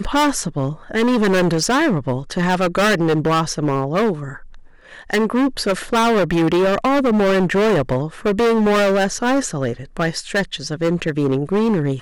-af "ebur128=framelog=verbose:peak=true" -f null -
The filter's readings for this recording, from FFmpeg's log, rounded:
Integrated loudness:
  I:         -18.2 LUFS
  Threshold: -28.4 LUFS
Loudness range:
  LRA:         2.9 LU
  Threshold: -38.2 LUFS
  LRA low:   -19.7 LUFS
  LRA high:  -16.8 LUFS
True peak:
  Peak:      -11.7 dBFS